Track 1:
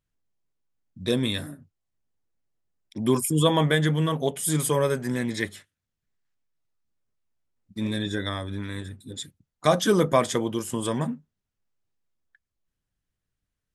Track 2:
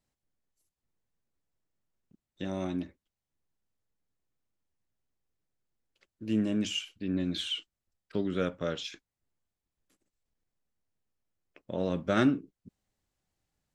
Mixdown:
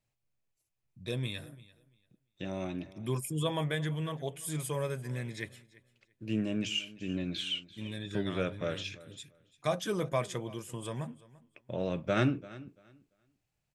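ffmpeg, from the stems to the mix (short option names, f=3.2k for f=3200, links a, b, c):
-filter_complex "[0:a]volume=-12.5dB,asplit=2[a][b];[b]volume=-21dB[c];[1:a]volume=-3dB,asplit=2[d][e];[e]volume=-19dB[f];[c][f]amix=inputs=2:normalize=0,aecho=0:1:341|682|1023:1|0.2|0.04[g];[a][d][g]amix=inputs=3:normalize=0,equalizer=f=125:t=o:w=0.33:g=10,equalizer=f=250:t=o:w=0.33:g=-5,equalizer=f=630:t=o:w=0.33:g=3,equalizer=f=2.5k:t=o:w=0.33:g=8"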